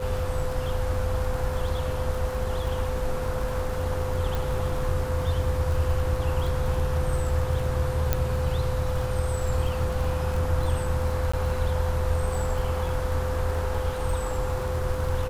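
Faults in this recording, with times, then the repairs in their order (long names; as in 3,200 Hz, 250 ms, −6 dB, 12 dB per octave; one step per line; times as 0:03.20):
surface crackle 33 per second −31 dBFS
whistle 510 Hz −31 dBFS
0:04.35: click
0:08.13: click −8 dBFS
0:11.32–0:11.34: drop-out 15 ms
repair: click removal
notch filter 510 Hz, Q 30
repair the gap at 0:11.32, 15 ms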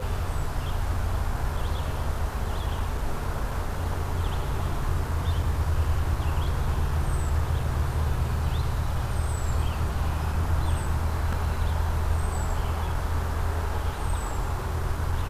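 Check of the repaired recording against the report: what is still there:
0:04.35: click
0:08.13: click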